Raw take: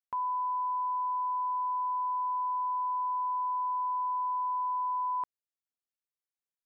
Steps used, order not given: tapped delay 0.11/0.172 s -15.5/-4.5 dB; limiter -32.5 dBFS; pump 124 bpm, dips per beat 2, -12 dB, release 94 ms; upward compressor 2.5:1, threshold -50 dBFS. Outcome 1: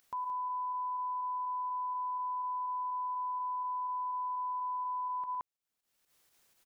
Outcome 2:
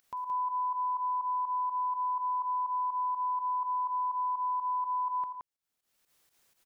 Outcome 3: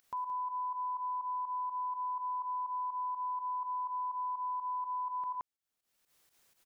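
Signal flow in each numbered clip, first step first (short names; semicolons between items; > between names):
pump > upward compressor > tapped delay > limiter; limiter > upward compressor > tapped delay > pump; upward compressor > tapped delay > limiter > pump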